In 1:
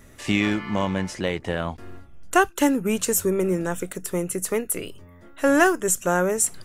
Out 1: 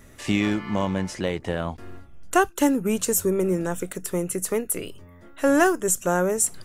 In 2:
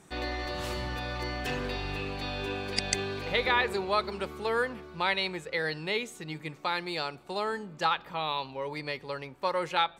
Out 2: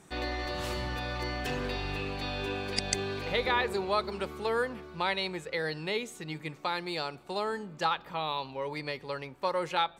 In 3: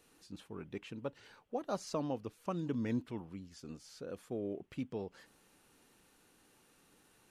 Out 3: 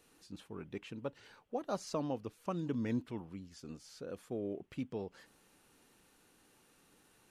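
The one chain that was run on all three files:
dynamic equaliser 2,200 Hz, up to −4 dB, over −36 dBFS, Q 0.75

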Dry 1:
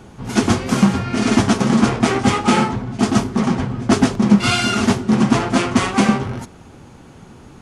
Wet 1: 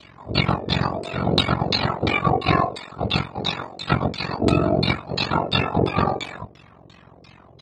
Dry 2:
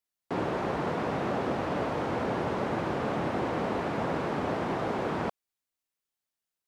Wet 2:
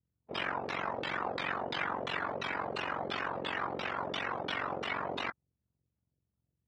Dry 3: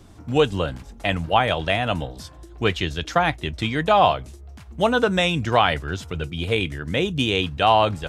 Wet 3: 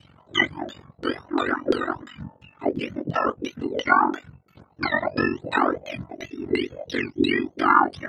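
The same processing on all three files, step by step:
frequency axis turned over on the octave scale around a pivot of 960 Hz
auto-filter low-pass saw down 2.9 Hz 420–4,100 Hz
ring modulation 23 Hz

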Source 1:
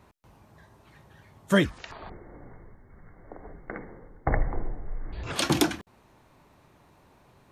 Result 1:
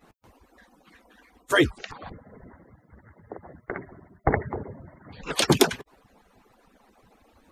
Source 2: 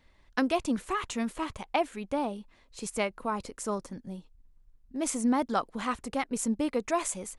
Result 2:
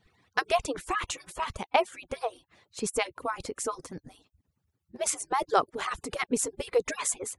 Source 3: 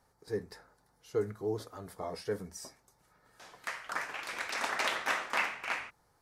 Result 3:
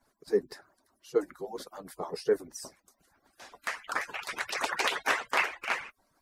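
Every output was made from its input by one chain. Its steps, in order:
harmonic-percussive split with one part muted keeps percussive
dynamic equaliser 410 Hz, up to +6 dB, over −51 dBFS, Q 3
level +4.5 dB

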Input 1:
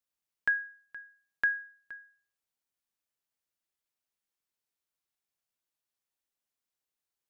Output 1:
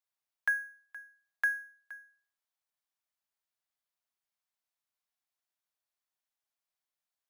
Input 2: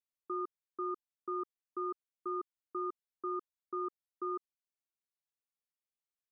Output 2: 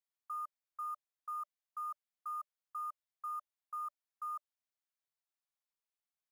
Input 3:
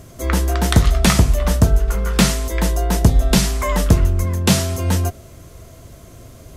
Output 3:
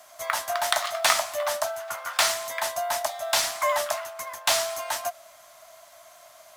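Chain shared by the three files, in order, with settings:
Chebyshev high-pass filter 590 Hz, order 8
parametric band 2,700 Hz −3.5 dB 0.41 octaves
in parallel at −10 dB: sample-rate reduction 12,000 Hz, jitter 0%
on the sum: level −2.5 dB

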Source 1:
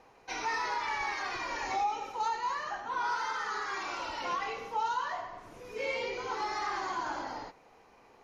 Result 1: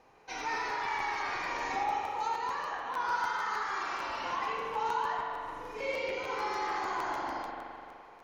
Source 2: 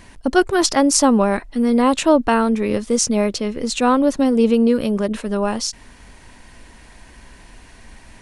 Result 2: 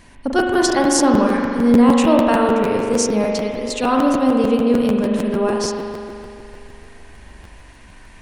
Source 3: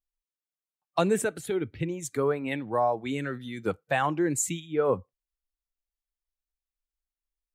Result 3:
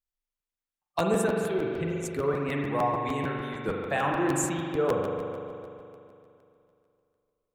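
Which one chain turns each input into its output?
spring reverb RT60 2.7 s, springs 42 ms, chirp 70 ms, DRR −1 dB
regular buffer underruns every 0.15 s, samples 512, repeat, from 0:00.38
level −3 dB

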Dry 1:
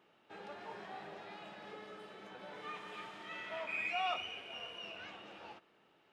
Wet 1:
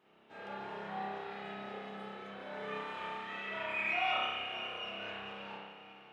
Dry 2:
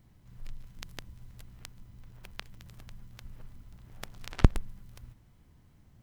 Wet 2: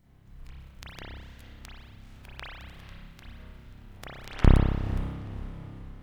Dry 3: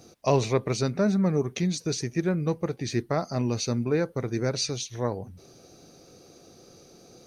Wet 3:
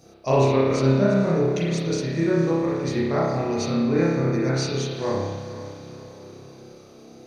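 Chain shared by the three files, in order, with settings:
feedback delay with all-pass diffusion 476 ms, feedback 50%, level −13 dB
spring reverb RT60 1.2 s, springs 30 ms, chirp 30 ms, DRR −7.5 dB
level −3 dB

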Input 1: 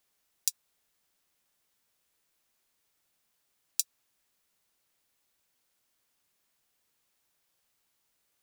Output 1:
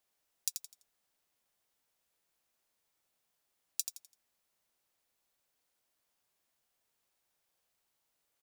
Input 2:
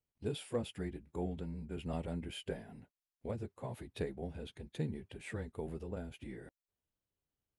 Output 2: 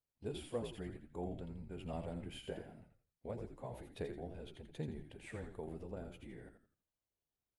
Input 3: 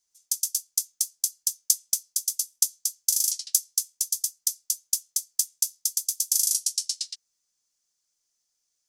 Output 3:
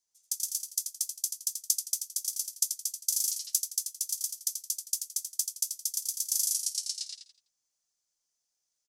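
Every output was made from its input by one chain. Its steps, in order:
parametric band 690 Hz +4.5 dB 1.1 octaves
echo with shifted repeats 84 ms, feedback 32%, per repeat −67 Hz, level −7 dB
level −6 dB

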